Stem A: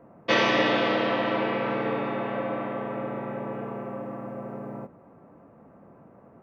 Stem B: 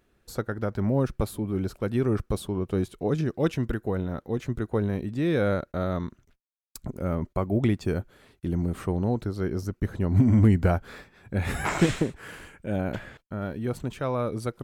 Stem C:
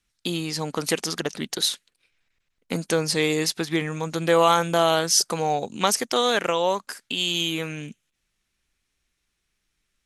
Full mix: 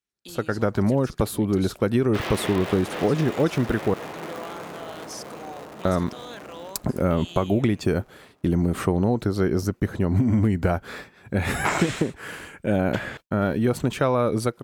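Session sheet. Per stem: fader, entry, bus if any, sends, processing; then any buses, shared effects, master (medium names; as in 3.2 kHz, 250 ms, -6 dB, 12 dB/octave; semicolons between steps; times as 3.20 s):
-7.0 dB, 1.85 s, no send, echo send -8.5 dB, cycle switcher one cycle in 3, inverted
-1.5 dB, 0.00 s, muted 3.94–5.85 s, no send, no echo send, expander -50 dBFS; level rider gain up to 15.5 dB
-15.5 dB, 0.00 s, no send, no echo send, peak limiter -13 dBFS, peak gain reduction 8 dB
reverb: none
echo: feedback delay 772 ms, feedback 38%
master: high-pass 130 Hz 6 dB/octave; compression, threshold -17 dBFS, peak gain reduction 8 dB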